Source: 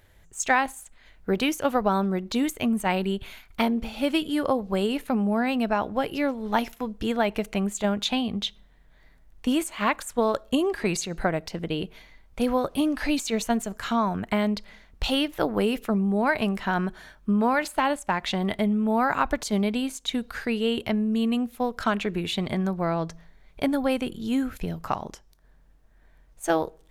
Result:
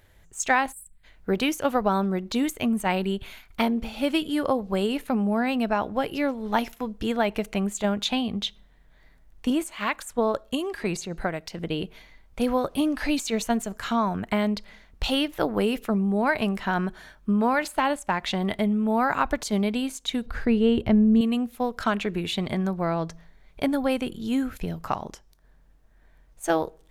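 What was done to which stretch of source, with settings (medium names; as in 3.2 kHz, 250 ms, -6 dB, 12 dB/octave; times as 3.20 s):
0.72–1.04 s: time-frequency box 200–7500 Hz -22 dB
9.50–11.58 s: harmonic tremolo 1.3 Hz, depth 50%, crossover 1.3 kHz
20.26–21.21 s: tilt EQ -3 dB/octave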